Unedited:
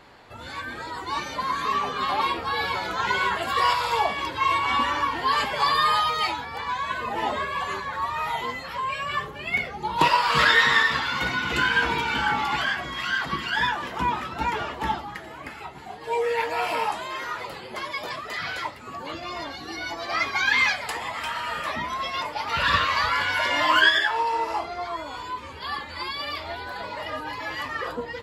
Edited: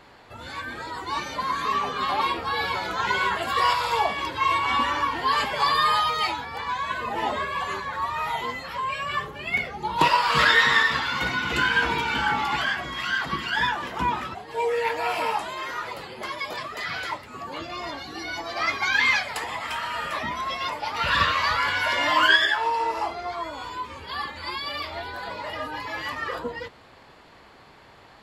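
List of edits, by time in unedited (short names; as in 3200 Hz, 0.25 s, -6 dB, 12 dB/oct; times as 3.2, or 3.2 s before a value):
14.35–15.88 cut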